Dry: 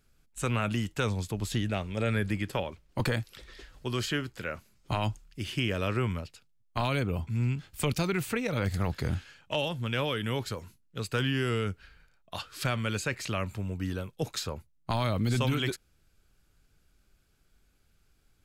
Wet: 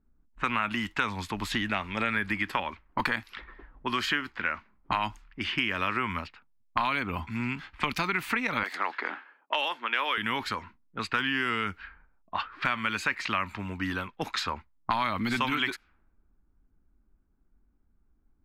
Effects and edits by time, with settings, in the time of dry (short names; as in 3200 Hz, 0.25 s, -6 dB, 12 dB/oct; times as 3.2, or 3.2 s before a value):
8.63–10.18 HPF 350 Hz 24 dB/oct
whole clip: low-pass opened by the level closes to 340 Hz, open at -29 dBFS; ten-band EQ 125 Hz -12 dB, 250 Hz +6 dB, 500 Hz -8 dB, 1000 Hz +12 dB, 2000 Hz +10 dB, 4000 Hz +3 dB, 8000 Hz -6 dB; compressor 3:1, threshold -27 dBFS; gain +1.5 dB